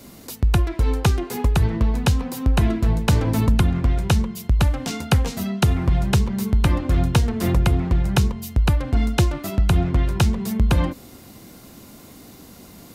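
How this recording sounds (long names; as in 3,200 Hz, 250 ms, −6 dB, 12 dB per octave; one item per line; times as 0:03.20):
background noise floor −45 dBFS
spectral slope −6.5 dB per octave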